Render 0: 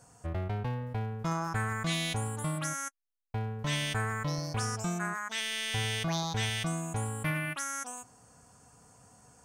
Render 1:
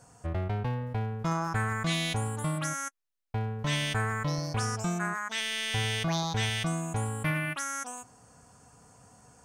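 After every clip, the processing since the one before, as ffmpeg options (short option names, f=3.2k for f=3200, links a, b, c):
-af "highshelf=f=7.6k:g=-4.5,volume=2.5dB"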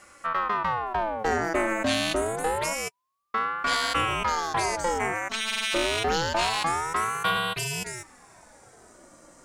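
-af "aeval=exprs='val(0)*sin(2*PI*860*n/s+860*0.5/0.27*sin(2*PI*0.27*n/s))':c=same,volume=7dB"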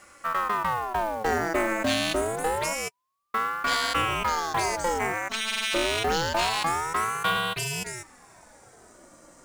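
-af "acrusher=bits=5:mode=log:mix=0:aa=0.000001"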